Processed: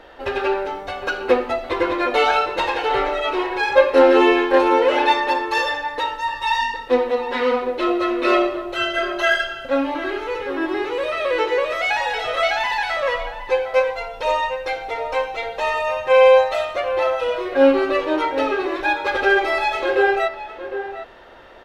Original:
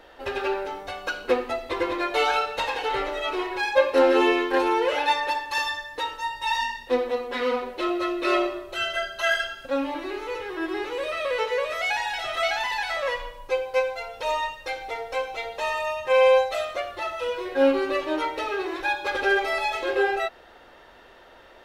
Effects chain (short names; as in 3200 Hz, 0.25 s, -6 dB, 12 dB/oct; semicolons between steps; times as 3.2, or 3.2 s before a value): high shelf 5400 Hz -9.5 dB; outdoor echo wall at 130 m, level -10 dB; gain +6 dB